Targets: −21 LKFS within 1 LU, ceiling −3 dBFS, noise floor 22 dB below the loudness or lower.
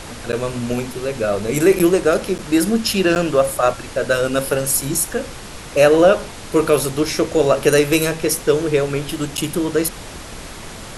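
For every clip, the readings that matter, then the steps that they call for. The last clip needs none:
number of dropouts 5; longest dropout 8.4 ms; background noise floor −34 dBFS; target noise floor −40 dBFS; integrated loudness −18.0 LKFS; sample peak −1.5 dBFS; target loudness −21.0 LKFS
→ repair the gap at 0:00.32/0:01.79/0:02.38/0:03.15/0:09.37, 8.4 ms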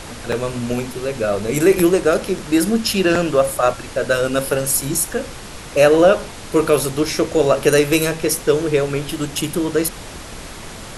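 number of dropouts 0; background noise floor −34 dBFS; target noise floor −40 dBFS
→ noise reduction from a noise print 6 dB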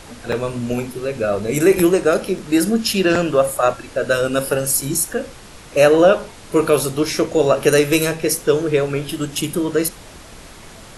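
background noise floor −40 dBFS; integrated loudness −18.0 LKFS; sample peak −1.5 dBFS; target loudness −21.0 LKFS
→ level −3 dB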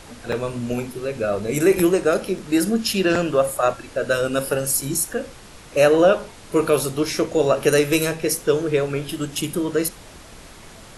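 integrated loudness −21.0 LKFS; sample peak −4.5 dBFS; background noise floor −43 dBFS

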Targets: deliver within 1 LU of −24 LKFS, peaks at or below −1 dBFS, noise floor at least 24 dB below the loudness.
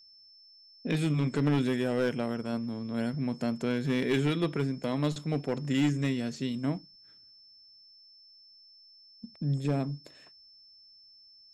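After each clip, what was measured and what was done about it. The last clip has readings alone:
share of clipped samples 0.6%; peaks flattened at −20.5 dBFS; interfering tone 5,300 Hz; level of the tone −54 dBFS; integrated loudness −30.5 LKFS; sample peak −20.5 dBFS; target loudness −24.0 LKFS
→ clipped peaks rebuilt −20.5 dBFS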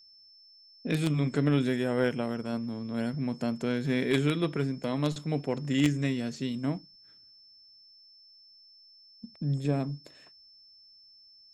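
share of clipped samples 0.0%; interfering tone 5,300 Hz; level of the tone −54 dBFS
→ notch filter 5,300 Hz, Q 30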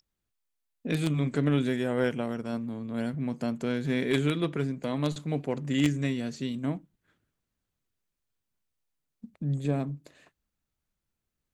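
interfering tone none found; integrated loudness −30.0 LKFS; sample peak −11.5 dBFS; target loudness −24.0 LKFS
→ level +6 dB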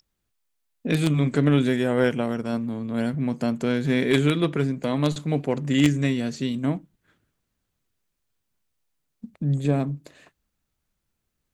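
integrated loudness −24.0 LKFS; sample peak −5.5 dBFS; background noise floor −79 dBFS

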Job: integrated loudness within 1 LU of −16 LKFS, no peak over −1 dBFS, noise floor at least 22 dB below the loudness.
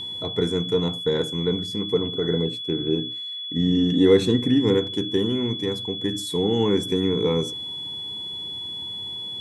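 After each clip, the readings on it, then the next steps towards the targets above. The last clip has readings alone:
interfering tone 3,400 Hz; level of the tone −30 dBFS; integrated loudness −23.5 LKFS; sample peak −6.5 dBFS; target loudness −16.0 LKFS
→ notch filter 3,400 Hz, Q 30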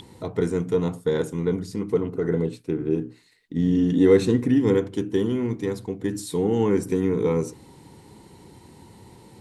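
interfering tone none found; integrated loudness −23.5 LKFS; sample peak −7.0 dBFS; target loudness −16.0 LKFS
→ level +7.5 dB
brickwall limiter −1 dBFS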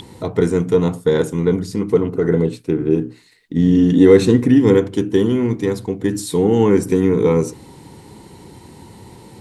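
integrated loudness −16.0 LKFS; sample peak −1.0 dBFS; background noise floor −44 dBFS

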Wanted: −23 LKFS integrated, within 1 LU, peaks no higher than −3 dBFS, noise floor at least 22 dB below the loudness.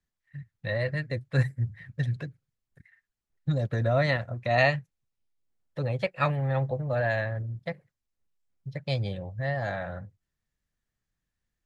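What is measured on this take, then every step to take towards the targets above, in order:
integrated loudness −29.0 LKFS; sample peak −8.0 dBFS; target loudness −23.0 LKFS
→ level +6 dB
brickwall limiter −3 dBFS

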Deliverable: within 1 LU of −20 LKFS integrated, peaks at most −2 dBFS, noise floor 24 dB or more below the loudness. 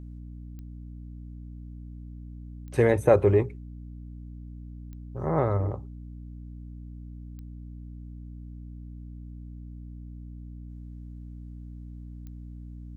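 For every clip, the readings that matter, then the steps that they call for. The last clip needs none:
number of clicks 5; mains hum 60 Hz; hum harmonics up to 300 Hz; level of the hum −38 dBFS; integrated loudness −25.0 LKFS; sample peak −6.0 dBFS; target loudness −20.0 LKFS
→ click removal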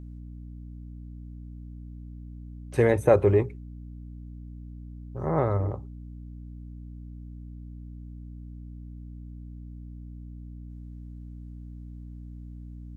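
number of clicks 0; mains hum 60 Hz; hum harmonics up to 300 Hz; level of the hum −38 dBFS
→ mains-hum notches 60/120/180/240/300 Hz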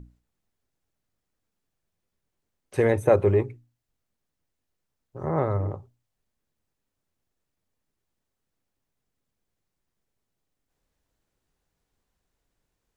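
mains hum none found; integrated loudness −24.0 LKFS; sample peak −6.5 dBFS; target loudness −20.0 LKFS
→ level +4 dB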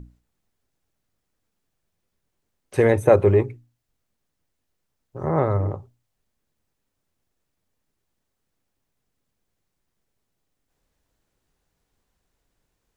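integrated loudness −20.5 LKFS; sample peak −2.5 dBFS; background noise floor −78 dBFS

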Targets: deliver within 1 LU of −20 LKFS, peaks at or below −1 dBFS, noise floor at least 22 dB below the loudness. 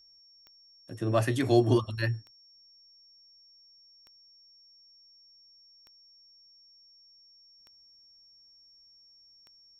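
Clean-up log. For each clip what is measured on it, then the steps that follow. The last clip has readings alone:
number of clicks 6; interfering tone 5,500 Hz; level of the tone −56 dBFS; integrated loudness −27.5 LKFS; sample peak −10.5 dBFS; target loudness −20.0 LKFS
→ click removal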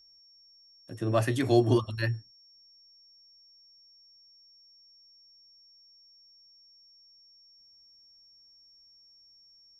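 number of clicks 0; interfering tone 5,500 Hz; level of the tone −56 dBFS
→ notch filter 5,500 Hz, Q 30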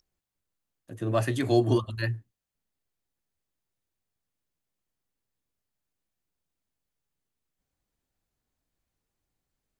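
interfering tone none found; integrated loudness −27.0 LKFS; sample peak −10.5 dBFS; target loudness −20.0 LKFS
→ level +7 dB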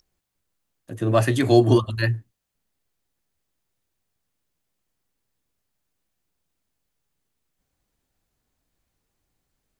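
integrated loudness −20.0 LKFS; sample peak −3.5 dBFS; background noise floor −78 dBFS

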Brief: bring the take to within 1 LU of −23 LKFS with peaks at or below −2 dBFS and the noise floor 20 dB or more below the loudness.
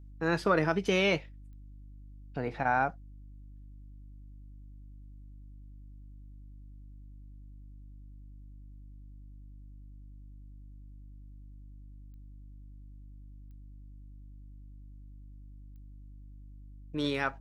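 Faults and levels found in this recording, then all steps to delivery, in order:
number of clicks 4; mains hum 50 Hz; hum harmonics up to 300 Hz; level of the hum −46 dBFS; integrated loudness −30.0 LKFS; sample peak −13.0 dBFS; target loudness −23.0 LKFS
→ click removal
hum removal 50 Hz, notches 6
level +7 dB

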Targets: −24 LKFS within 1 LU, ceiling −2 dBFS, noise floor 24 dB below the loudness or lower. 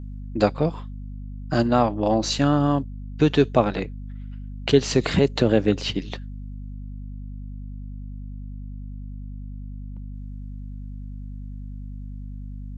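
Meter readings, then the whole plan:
mains hum 50 Hz; hum harmonics up to 250 Hz; level of the hum −32 dBFS; integrated loudness −22.0 LKFS; sample peak −3.5 dBFS; target loudness −24.0 LKFS
→ mains-hum notches 50/100/150/200/250 Hz
level −2 dB

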